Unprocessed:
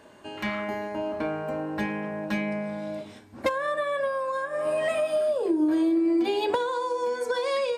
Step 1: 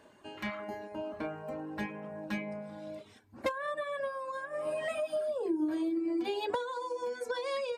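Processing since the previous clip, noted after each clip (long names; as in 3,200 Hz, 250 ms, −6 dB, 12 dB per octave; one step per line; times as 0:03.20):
reverb reduction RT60 0.77 s
level −6.5 dB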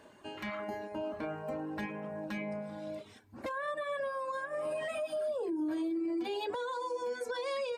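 brickwall limiter −31 dBFS, peak gain reduction 11.5 dB
level +2 dB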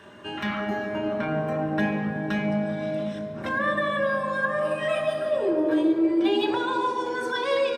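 far-end echo of a speakerphone 140 ms, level −15 dB
convolution reverb RT60 3.4 s, pre-delay 4 ms, DRR 2 dB
level +1 dB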